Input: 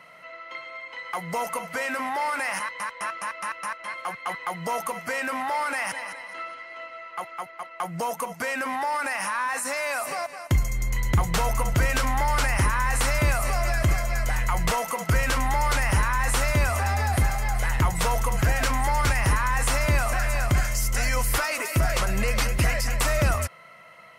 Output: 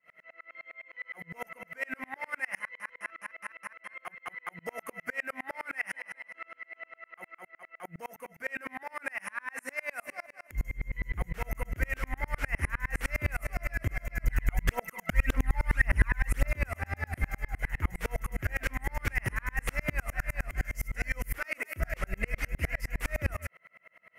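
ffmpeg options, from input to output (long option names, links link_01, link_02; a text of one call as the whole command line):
ffmpeg -i in.wav -filter_complex "[0:a]equalizer=frequency=125:width_type=o:width=1:gain=-6,equalizer=frequency=1000:width_type=o:width=1:gain=-10,equalizer=frequency=2000:width_type=o:width=1:gain=9,equalizer=frequency=4000:width_type=o:width=1:gain=-12,equalizer=frequency=8000:width_type=o:width=1:gain=-8,asettb=1/sr,asplit=3[link_01][link_02][link_03];[link_01]atrim=end=14.244[link_04];[link_02]atrim=start=14.24:end=16.52,asetpts=PTS-STARTPTS,afade=type=in:duration=0.004:curve=qsin,afade=type=out:start_time=2.276:duration=0.004:curve=qsin,aphaser=in_gain=1:out_gain=1:delay=1.5:decay=0.6:speed=1.8:type=triangular[link_05];[link_03]atrim=start=16.516[link_06];[link_04][link_05]acrossfade=duration=0.004:curve1=hsin:curve2=qsin[link_07];[link_07][link_06]acrossfade=duration=0.004:curve1=qsin:curve2=hsin,aeval=exprs='val(0)*pow(10,-36*if(lt(mod(-9.8*n/s,1),2*abs(-9.8)/1000),1-mod(-9.8*n/s,1)/(2*abs(-9.8)/1000),(mod(-9.8*n/s,1)-2*abs(-9.8)/1000)/(1-2*abs(-9.8)/1000))/20)':channel_layout=same" out.wav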